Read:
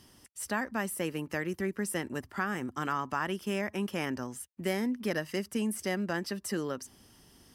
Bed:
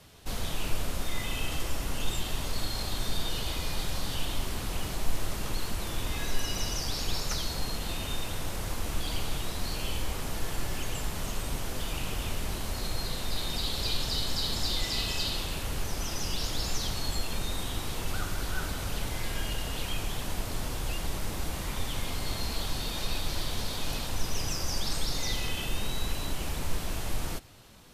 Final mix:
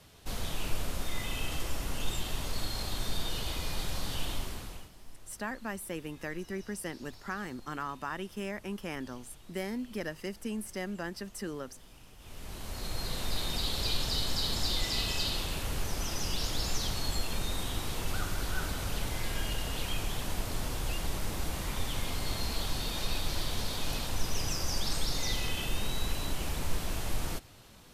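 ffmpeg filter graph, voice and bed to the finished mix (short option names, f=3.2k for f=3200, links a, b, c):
-filter_complex "[0:a]adelay=4900,volume=-5dB[a];[1:a]volume=18.5dB,afade=t=out:st=4.3:d=0.61:silence=0.105925,afade=t=in:st=12.18:d=1.04:silence=0.0891251[b];[a][b]amix=inputs=2:normalize=0"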